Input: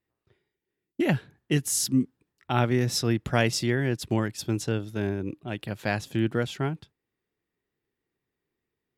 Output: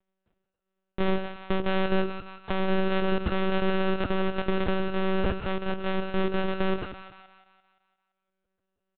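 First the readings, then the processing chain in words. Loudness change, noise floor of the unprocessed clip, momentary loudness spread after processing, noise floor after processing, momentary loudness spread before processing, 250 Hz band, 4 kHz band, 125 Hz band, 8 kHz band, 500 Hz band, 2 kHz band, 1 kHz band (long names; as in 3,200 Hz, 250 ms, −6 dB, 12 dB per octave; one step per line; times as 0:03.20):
−1.5 dB, below −85 dBFS, 7 LU, −83 dBFS, 9 LU, −1.5 dB, −3.0 dB, −6.0 dB, below −40 dB, +2.5 dB, 0.0 dB, +2.5 dB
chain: samples sorted by size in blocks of 128 samples
noise gate −48 dBFS, range −55 dB
low-shelf EQ 140 Hz +11.5 dB
comb filter 2.9 ms, depth 65%
in parallel at −3 dB: output level in coarse steps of 17 dB
on the sum: brickwall limiter −14.5 dBFS, peak gain reduction 13 dB
upward compression, threshold −45 dBFS
on a send: echo with a time of its own for lows and highs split 590 Hz, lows 92 ms, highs 172 ms, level −8.5 dB
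on the sum: one-pitch LPC vocoder at 8 kHz 190 Hz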